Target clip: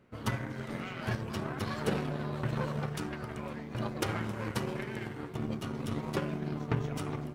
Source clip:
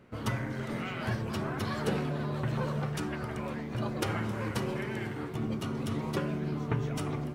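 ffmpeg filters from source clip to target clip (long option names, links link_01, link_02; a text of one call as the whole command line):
ffmpeg -i in.wav -af "aeval=exprs='0.133*(cos(1*acos(clip(val(0)/0.133,-1,1)))-cos(1*PI/2))+0.00944*(cos(7*acos(clip(val(0)/0.133,-1,1)))-cos(7*PI/2))':channel_layout=same" out.wav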